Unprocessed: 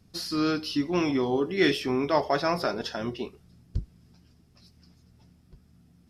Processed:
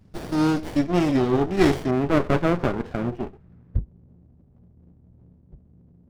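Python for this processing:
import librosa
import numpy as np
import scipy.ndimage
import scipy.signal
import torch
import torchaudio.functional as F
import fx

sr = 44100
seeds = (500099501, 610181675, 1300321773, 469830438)

y = fx.cheby1_lowpass(x, sr, hz=fx.steps((0.0, 6800.0), (1.9, 1800.0), (3.78, 510.0)), order=3)
y = fx.running_max(y, sr, window=33)
y = y * 10.0 ** (6.0 / 20.0)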